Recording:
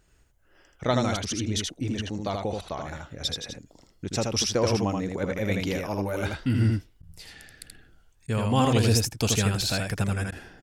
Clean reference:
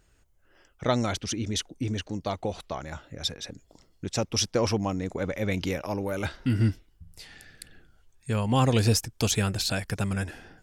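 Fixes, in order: interpolate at 7.02/8.27/10.31 s, 10 ms; inverse comb 80 ms -3.5 dB

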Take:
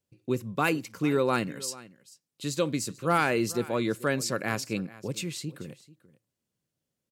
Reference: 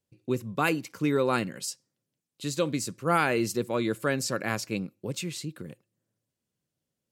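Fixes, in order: clip repair -14 dBFS; inverse comb 439 ms -19.5 dB

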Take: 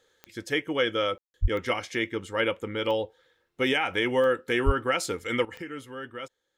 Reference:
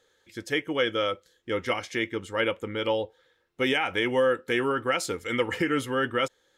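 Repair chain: de-click; 1.41–1.53 s: high-pass 140 Hz 24 dB/octave; 4.65–4.77 s: high-pass 140 Hz 24 dB/octave; room tone fill 1.18–1.34 s; 5.45 s: gain correction +12 dB

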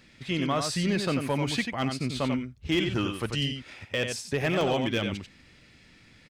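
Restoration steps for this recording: clip repair -19 dBFS; interpolate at 4.61 s, 1.6 ms; inverse comb 91 ms -6.5 dB

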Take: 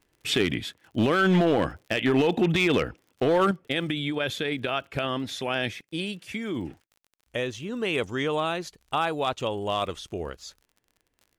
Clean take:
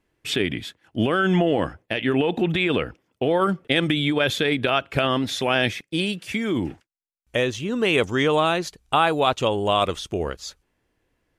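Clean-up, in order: clip repair -15.5 dBFS; de-click; gain correction +7 dB, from 3.51 s

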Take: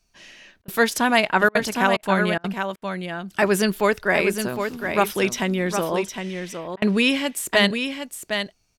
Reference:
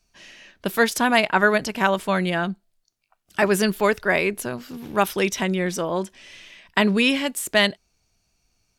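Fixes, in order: interpolate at 0.62/1.49/1.97/2.38/2.76/6.76 s, 59 ms; inverse comb 760 ms -7 dB

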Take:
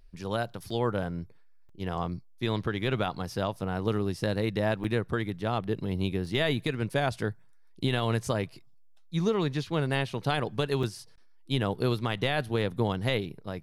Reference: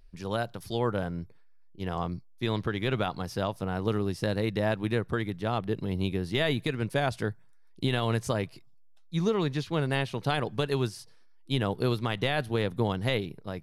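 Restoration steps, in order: interpolate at 0.70/1.69/4.84/6.26/10.83 s, 4.1 ms; interpolate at 11.16 s, 14 ms

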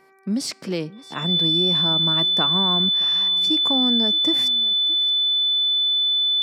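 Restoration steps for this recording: de-hum 386.3 Hz, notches 6; band-stop 3.5 kHz, Q 30; inverse comb 621 ms -20.5 dB

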